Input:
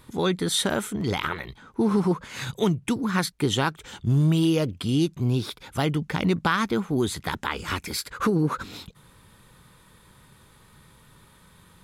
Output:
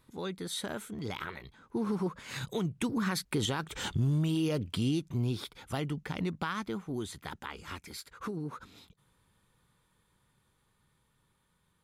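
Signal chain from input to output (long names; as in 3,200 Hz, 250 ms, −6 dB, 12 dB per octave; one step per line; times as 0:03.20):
source passing by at 0:03.87, 8 m/s, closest 3.2 metres
downward compressor 1.5 to 1, threshold −37 dBFS, peak gain reduction 7 dB
brickwall limiter −28 dBFS, peak gain reduction 10 dB
level +6 dB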